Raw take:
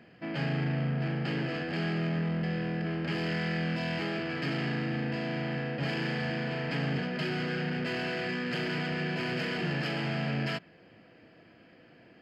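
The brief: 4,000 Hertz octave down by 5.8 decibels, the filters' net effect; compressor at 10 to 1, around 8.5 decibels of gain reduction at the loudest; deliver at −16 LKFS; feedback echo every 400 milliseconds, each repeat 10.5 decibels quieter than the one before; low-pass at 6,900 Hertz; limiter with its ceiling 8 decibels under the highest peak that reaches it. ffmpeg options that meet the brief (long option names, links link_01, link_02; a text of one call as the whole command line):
ffmpeg -i in.wav -af "lowpass=6900,equalizer=frequency=4000:width_type=o:gain=-8.5,acompressor=threshold=-36dB:ratio=10,alimiter=level_in=12.5dB:limit=-24dB:level=0:latency=1,volume=-12.5dB,aecho=1:1:400|800|1200:0.299|0.0896|0.0269,volume=28dB" out.wav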